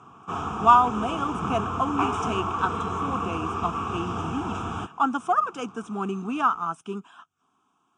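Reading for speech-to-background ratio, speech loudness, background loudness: 3.0 dB, -26.5 LUFS, -29.5 LUFS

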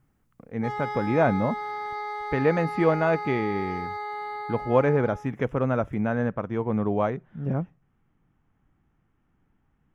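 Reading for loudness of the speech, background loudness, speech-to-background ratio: -26.0 LUFS, -33.5 LUFS, 7.5 dB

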